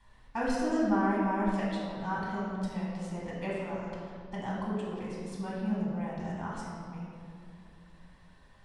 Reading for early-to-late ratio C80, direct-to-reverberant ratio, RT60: 1.0 dB, -6.0 dB, 2.5 s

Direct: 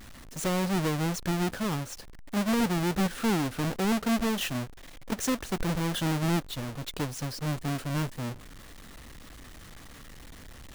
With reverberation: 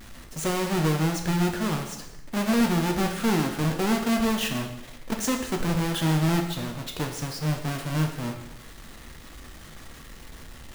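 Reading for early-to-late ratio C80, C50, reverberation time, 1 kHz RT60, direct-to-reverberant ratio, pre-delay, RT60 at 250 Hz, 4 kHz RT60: 9.0 dB, 7.0 dB, 0.90 s, 0.90 s, 2.5 dB, 4 ms, 0.90 s, 0.85 s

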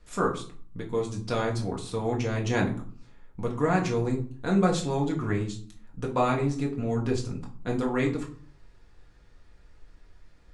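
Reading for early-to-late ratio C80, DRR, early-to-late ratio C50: 15.5 dB, -2.0 dB, 10.0 dB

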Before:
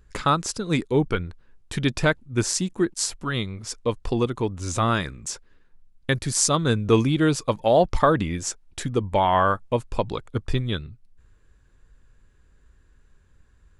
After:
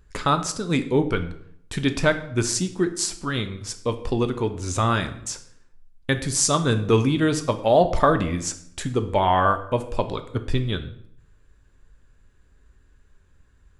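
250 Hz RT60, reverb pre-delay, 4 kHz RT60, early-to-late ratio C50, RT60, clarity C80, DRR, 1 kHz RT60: 0.80 s, 3 ms, 0.55 s, 12.5 dB, 0.65 s, 15.5 dB, 7.5 dB, 0.65 s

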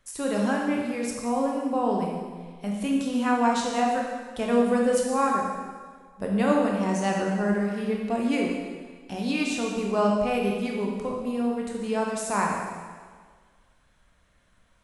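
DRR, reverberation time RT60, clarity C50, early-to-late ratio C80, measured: -1.5 dB, 1.6 s, 1.5 dB, 3.5 dB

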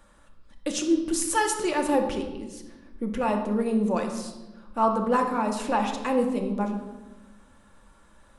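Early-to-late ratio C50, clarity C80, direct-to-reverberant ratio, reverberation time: 6.5 dB, 9.0 dB, 2.5 dB, 1.1 s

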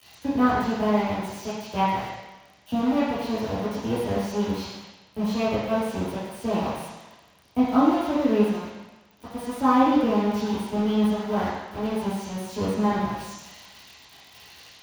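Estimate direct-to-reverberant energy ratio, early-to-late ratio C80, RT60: -11.0 dB, 2.0 dB, 1.1 s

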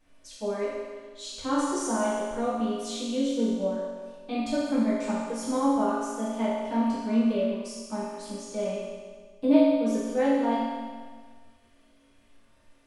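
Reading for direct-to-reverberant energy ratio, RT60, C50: -10.0 dB, 1.6 s, -2.0 dB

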